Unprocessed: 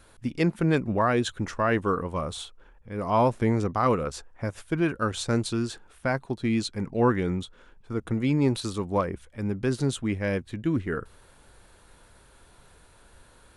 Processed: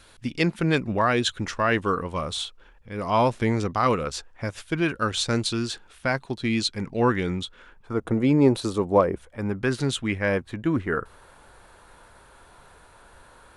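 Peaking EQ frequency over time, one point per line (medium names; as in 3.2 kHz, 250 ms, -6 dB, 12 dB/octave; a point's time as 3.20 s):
peaking EQ +8.5 dB 2.2 oct
7.42 s 3.7 kHz
8.12 s 530 Hz
9.14 s 530 Hz
10.01 s 3.3 kHz
10.32 s 1 kHz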